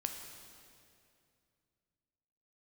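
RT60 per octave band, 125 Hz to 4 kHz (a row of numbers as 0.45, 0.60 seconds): 3.3, 2.9, 2.6, 2.3, 2.3, 2.1 seconds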